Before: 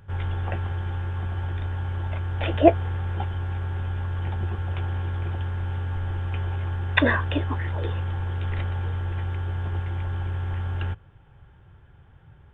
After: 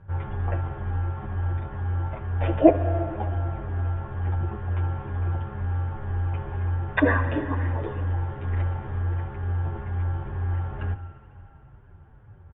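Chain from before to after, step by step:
low-pass filter 1,500 Hz 12 dB per octave
convolution reverb RT60 2.8 s, pre-delay 58 ms, DRR 9.5 dB
barber-pole flanger 8.1 ms −2.1 Hz
level +4 dB

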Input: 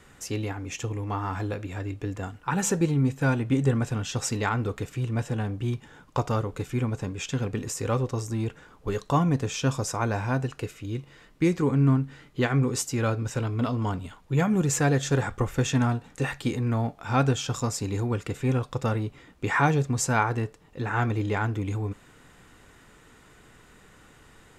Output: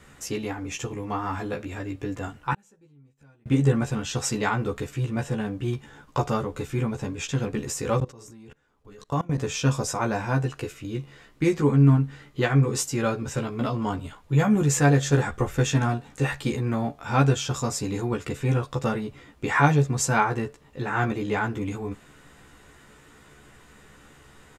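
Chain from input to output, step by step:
0:02.53–0:03.46: gate with flip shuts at −30 dBFS, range −35 dB
double-tracking delay 14 ms −2.5 dB
0:08.00–0:09.38: output level in coarse steps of 23 dB

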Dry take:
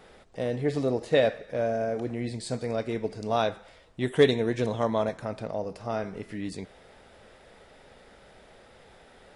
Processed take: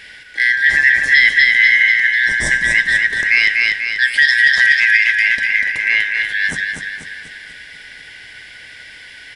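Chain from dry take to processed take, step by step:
band-splitting scrambler in four parts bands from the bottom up 4123
low-shelf EQ 230 Hz +9 dB
repeating echo 244 ms, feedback 52%, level −5 dB
boost into a limiter +15.5 dB
level −1 dB

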